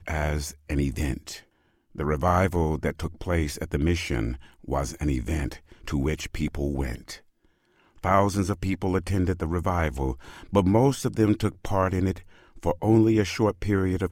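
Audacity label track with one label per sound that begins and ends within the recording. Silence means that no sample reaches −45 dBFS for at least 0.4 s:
1.950000	7.190000	sound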